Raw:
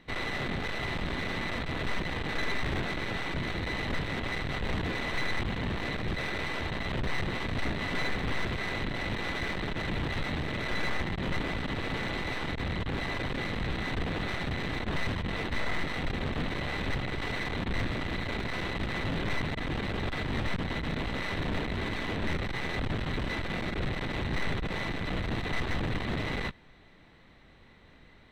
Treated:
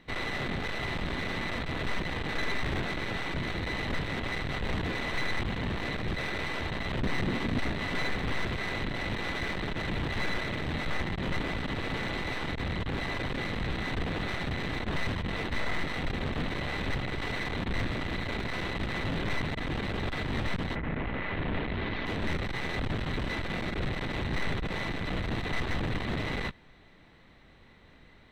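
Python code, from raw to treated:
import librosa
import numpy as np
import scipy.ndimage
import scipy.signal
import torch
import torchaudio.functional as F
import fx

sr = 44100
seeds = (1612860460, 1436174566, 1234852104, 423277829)

y = fx.peak_eq(x, sr, hz=240.0, db=8.0, octaves=1.1, at=(7.02, 7.6))
y = fx.lowpass(y, sr, hz=fx.line((20.74, 2300.0), (22.05, 4200.0)), slope=24, at=(20.74, 22.05), fade=0.02)
y = fx.edit(y, sr, fx.reverse_span(start_s=10.19, length_s=0.71), tone=tone)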